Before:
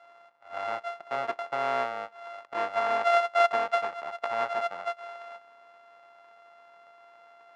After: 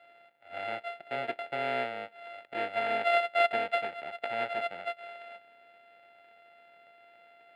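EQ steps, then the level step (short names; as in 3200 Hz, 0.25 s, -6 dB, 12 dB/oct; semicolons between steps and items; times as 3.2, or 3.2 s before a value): fixed phaser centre 2600 Hz, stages 4; +2.5 dB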